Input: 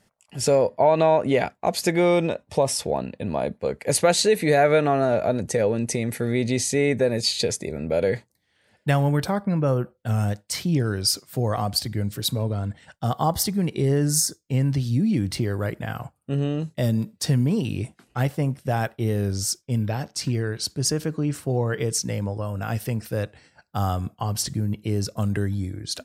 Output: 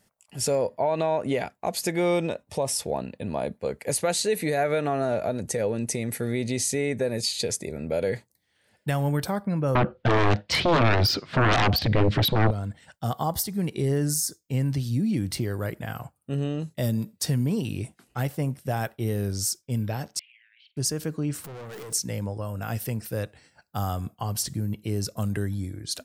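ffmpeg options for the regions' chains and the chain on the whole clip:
-filter_complex "[0:a]asettb=1/sr,asplit=3[s0][s1][s2];[s0]atrim=end=9.754[s3];[s1]atrim=start=9.75:end=12.51,asetpts=PTS-STARTPTS,afade=t=in:d=0.004:c=qsin,afade=t=out:st=2.756:d=0.004:c=qsin,lowpass=f=3600:w=0.5412,lowpass=f=3600:w=1.3066,aeval=exprs='0.251*sin(PI/2*5.01*val(0)/0.251)':c=same[s4];[s2]atrim=start=12.506[s5];[s3][s4]acrossfade=d=0.004:c1=hsin:c2=qsin[s6];[s6][s5]acrossfade=d=0.004:c1=qsin:c2=hsin,asettb=1/sr,asplit=3[s7][s8][s9];[s7]atrim=end=20.194[s10];[s8]atrim=start=20.19:end=20.77,asetpts=PTS-STARTPTS,afade=t=in:d=0.004:c=qsin,afade=t=out:st=0.576:d=0.004:c=qsin,asuperpass=centerf=2600:order=8:qfactor=2.2,acompressor=threshold=0.00355:ratio=5:attack=3.2:release=140:knee=1:detection=peak,asplit=2[s11][s12];[s12]adelay=47,volume=0.2[s13];[s11][s13]amix=inputs=2:normalize=0,atrim=end_sample=25578[s14];[s9]atrim=start=20.766[s15];[s10][s14]acrossfade=d=0.004:c1=hsin:c2=qsin[s16];[s16][s15]acrossfade=d=0.004:c1=qsin:c2=hsin,asettb=1/sr,asplit=3[s17][s18][s19];[s17]atrim=end=21.444[s20];[s18]atrim=start=21.44:end=21.93,asetpts=PTS-STARTPTS,afade=t=in:d=0.004:c=qsin,afade=t=out:st=0.486:d=0.004:c=qsin,aeval=exprs='val(0)+0.5*0.0299*sgn(val(0))':c=same,highpass=150,aeval=exprs='(tanh(50.1*val(0)+0.25)-tanh(0.25))/50.1':c=same[s21];[s19]atrim=start=21.926[s22];[s20][s21]acrossfade=d=0.004:c1=hsin:c2=qsin[s23];[s23][s22]acrossfade=d=0.004:c1=qsin:c2=hsin,highshelf=f=9400:g=11,alimiter=limit=0.251:level=0:latency=1:release=180,volume=0.668"

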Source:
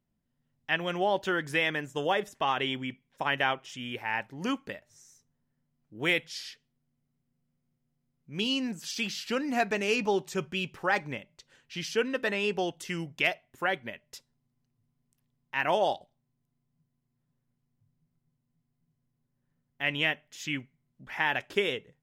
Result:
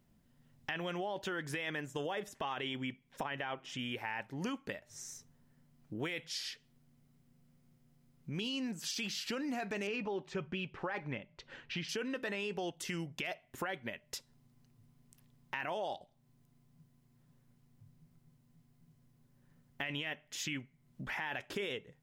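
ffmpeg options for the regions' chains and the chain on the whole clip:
-filter_complex "[0:a]asettb=1/sr,asplit=3[s0][s1][s2];[s0]atrim=end=3.234[s3];[s1]atrim=start=3.23:end=3.79,asetpts=PTS-STARTPTS,afade=t=in:d=0.004:c=qsin,afade=t=out:st=0.556:d=0.004:c=qsin,highshelf=f=4900:g=-10,bandreject=f=85.84:t=h:w=4,bandreject=f=171.68:t=h:w=4,bandreject=f=257.52:t=h:w=4,bandreject=f=343.36:t=h:w=4[s4];[s2]atrim=start=3.786[s5];[s3][s4]acrossfade=d=0.004:c1=hsin:c2=qsin[s6];[s6][s5]acrossfade=d=0.004:c1=qsin:c2=hsin,asettb=1/sr,asplit=3[s7][s8][s9];[s7]atrim=end=9.874[s10];[s8]atrim=start=9.87:end=11.89,asetpts=PTS-STARTPTS,afade=t=in:d=0.004:c=qsin,afade=t=out:st=2.016:d=0.004:c=qsin,lowpass=3100,aphaser=in_gain=1:out_gain=1:delay=3.8:decay=0.23:speed=1.5:type=triangular[s11];[s9]atrim=start=11.886[s12];[s10][s11]acrossfade=d=0.004:c1=hsin:c2=qsin[s13];[s13][s12]acrossfade=d=0.004:c1=qsin:c2=hsin,alimiter=limit=0.0668:level=0:latency=1:release=15,acompressor=threshold=0.00251:ratio=3,volume=3.35"

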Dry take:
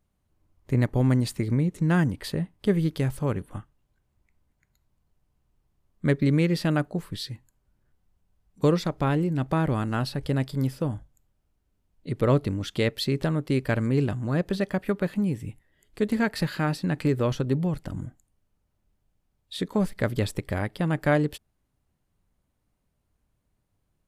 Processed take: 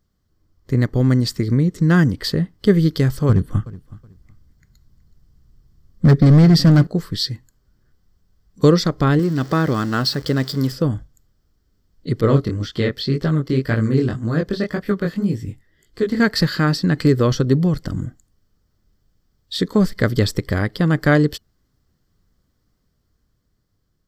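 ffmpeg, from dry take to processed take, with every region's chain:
-filter_complex "[0:a]asettb=1/sr,asplit=3[s0][s1][s2];[s0]atrim=end=3.294[s3];[s1]atrim=start=3.29:end=6.87,asetpts=PTS-STARTPTS,afade=t=in:d=0.004:c=qsin,afade=t=out:st=3.576:d=0.004:c=qsin,bass=f=250:g=9,treble=f=4000:g=2,volume=6.31,asoftclip=hard,volume=0.158,aecho=1:1:372|744:0.112|0.0258,atrim=end_sample=157878[s4];[s2]atrim=start=6.866[s5];[s3][s4]acrossfade=d=0.004:c1=hsin:c2=qsin[s6];[s6][s5]acrossfade=d=0.004:c1=qsin:c2=hsin,asettb=1/sr,asplit=3[s7][s8][s9];[s7]atrim=end=9.194[s10];[s8]atrim=start=9.19:end=10.72,asetpts=PTS-STARTPTS,afade=t=in:d=0.004:c=qsin,afade=t=out:st=1.526:d=0.004:c=qsin,aeval=exprs='val(0)+0.5*0.0119*sgn(val(0))':c=same,highpass=f=200:p=1[s11];[s9]atrim=start=10.716[s12];[s10][s11]acrossfade=d=0.004:c1=hsin:c2=qsin[s13];[s13][s12]acrossfade=d=0.004:c1=qsin:c2=hsin,asettb=1/sr,asplit=3[s14][s15][s16];[s14]atrim=end=12.214[s17];[s15]atrim=start=12.21:end=16.2,asetpts=PTS-STARTPTS,afade=t=in:d=0.004:c=qsin,afade=t=out:st=3.986:d=0.004:c=qsin,acrossover=split=3800[s18][s19];[s19]acompressor=threshold=0.00398:ratio=4:attack=1:release=60[s20];[s18][s20]amix=inputs=2:normalize=0,flanger=delay=17.5:depth=6.7:speed=1.9[s21];[s16]atrim=start=16.196[s22];[s17][s21]acrossfade=d=0.004:c1=hsin:c2=qsin[s23];[s23][s22]acrossfade=d=0.004:c1=qsin:c2=hsin,superequalizer=8b=0.562:9b=0.447:12b=0.447:14b=2:16b=0.398,dynaudnorm=f=480:g=7:m=1.58,volume=1.78"

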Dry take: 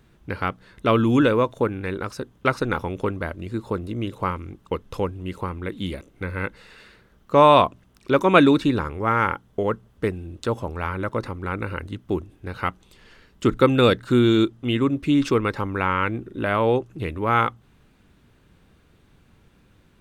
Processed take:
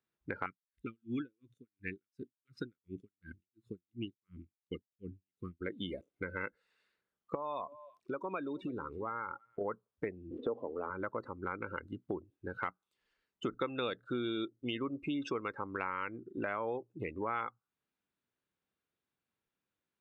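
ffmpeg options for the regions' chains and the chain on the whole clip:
-filter_complex "[0:a]asettb=1/sr,asplit=3[s0][s1][s2];[s0]atrim=end=0.464[s3];[s1]atrim=start=0.46:end=5.61,asetpts=PTS-STARTPTS,afade=t=in:d=0.004:c=qsin,afade=t=out:st=5.146:d=0.004:c=qsin,asuperstop=centerf=750:order=4:qfactor=0.53,aeval=exprs='val(0)*pow(10,-35*(0.5-0.5*cos(2*PI*2.8*n/s))/20)':c=same[s4];[s2]atrim=start=5.606[s5];[s3][s4]acrossfade=d=0.004:c1=hsin:c2=qsin[s6];[s6][s5]acrossfade=d=0.004:c1=qsin:c2=hsin,asettb=1/sr,asplit=3[s7][s8][s9];[s7]atrim=end=7.354[s10];[s8]atrim=start=7.35:end=9.61,asetpts=PTS-STARTPTS,afade=t=in:d=0.004:c=qsin,afade=t=out:st=2.256:d=0.004:c=qsin,acompressor=threshold=0.0251:ratio=2.5:attack=3.2:release=140:knee=1:detection=peak,aecho=1:1:327:0.141,atrim=end_sample=99666[s11];[s9]atrim=start=9.606[s12];[s10][s11]acrossfade=d=0.004:c1=hsin:c2=qsin[s13];[s13][s12]acrossfade=d=0.004:c1=qsin:c2=hsin,asettb=1/sr,asplit=3[s14][s15][s16];[s14]atrim=end=10.314[s17];[s15]atrim=start=10.31:end=10.9,asetpts=PTS-STARTPTS,afade=t=in:d=0.004:c=qsin,afade=t=out:st=0.586:d=0.004:c=qsin,aeval=exprs='val(0)+0.5*0.0237*sgn(val(0))':c=same,highpass=140,equalizer=f=150:t=q:w=4:g=-8,equalizer=f=260:t=q:w=4:g=7,equalizer=f=450:t=q:w=4:g=9,equalizer=f=920:t=q:w=4:g=-4,equalizer=f=1500:t=q:w=4:g=-8,equalizer=f=2200:t=q:w=4:g=-8,lowpass=f=3100:w=0.5412,lowpass=f=3100:w=1.3066[s18];[s16]atrim=start=10.896[s19];[s17][s18]acrossfade=d=0.004:c1=hsin:c2=qsin[s20];[s20][s19]acrossfade=d=0.004:c1=qsin:c2=hsin,afftdn=nr=29:nf=-31,highpass=f=510:p=1,acompressor=threshold=0.0141:ratio=4,volume=1.12"

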